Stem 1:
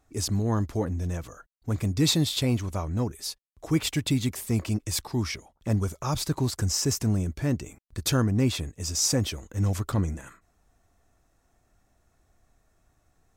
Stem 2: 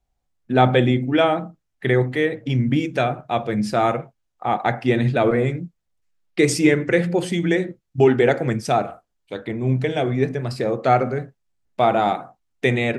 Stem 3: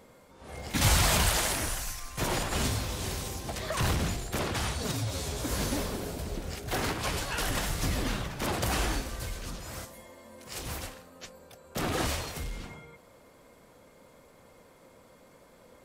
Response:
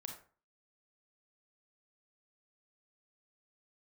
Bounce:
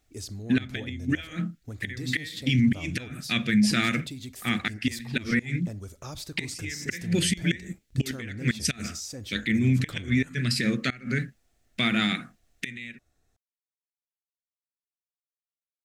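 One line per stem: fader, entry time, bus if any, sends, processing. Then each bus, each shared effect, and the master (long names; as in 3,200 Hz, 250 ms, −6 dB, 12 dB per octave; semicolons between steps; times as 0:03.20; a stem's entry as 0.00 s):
−6.0 dB, 0.00 s, send −9 dB, graphic EQ with 15 bands 160 Hz −5 dB, 1,000 Hz −8 dB, 4,000 Hz +4 dB; downward compressor 6 to 1, threshold −31 dBFS, peak gain reduction 13 dB
−0.5 dB, 0.00 s, no send, drawn EQ curve 130 Hz 0 dB, 220 Hz +8 dB, 360 Hz −7 dB, 830 Hz −23 dB, 1,800 Hz +11 dB; gate with flip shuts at −7 dBFS, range −24 dB
muted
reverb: on, RT60 0.40 s, pre-delay 27 ms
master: brickwall limiter −14 dBFS, peak gain reduction 9 dB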